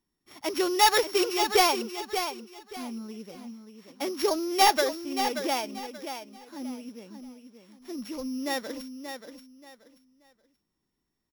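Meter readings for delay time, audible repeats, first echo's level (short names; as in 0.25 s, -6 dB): 0.581 s, 3, -8.5 dB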